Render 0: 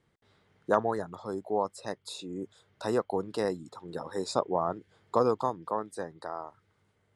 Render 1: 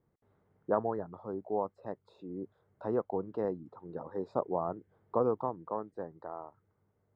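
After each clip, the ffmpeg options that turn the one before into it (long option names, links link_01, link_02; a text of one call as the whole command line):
ffmpeg -i in.wav -af "lowpass=1000,volume=-3dB" out.wav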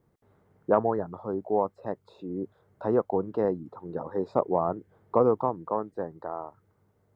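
ffmpeg -i in.wav -af "acontrast=90" out.wav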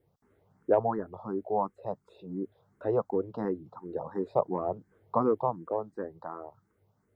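ffmpeg -i in.wav -filter_complex "[0:a]asplit=2[link_01][link_02];[link_02]afreqshift=2.8[link_03];[link_01][link_03]amix=inputs=2:normalize=1" out.wav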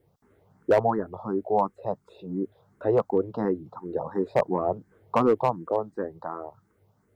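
ffmpeg -i in.wav -af "volume=18.5dB,asoftclip=hard,volume=-18.5dB,volume=5.5dB" out.wav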